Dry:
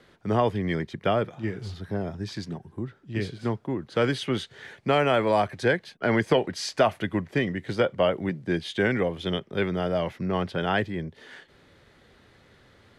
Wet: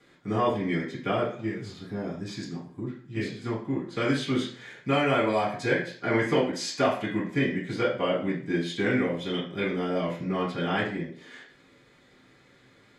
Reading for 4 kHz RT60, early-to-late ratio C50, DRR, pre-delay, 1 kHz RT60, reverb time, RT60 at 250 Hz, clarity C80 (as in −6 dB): 0.40 s, 6.5 dB, −8.0 dB, 3 ms, 0.45 s, 0.50 s, 0.50 s, 11.5 dB